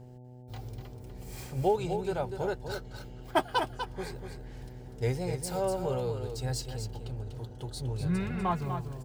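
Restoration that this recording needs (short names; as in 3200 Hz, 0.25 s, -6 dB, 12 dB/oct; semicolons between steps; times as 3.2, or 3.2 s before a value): de-hum 124.6 Hz, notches 7; inverse comb 0.246 s -7.5 dB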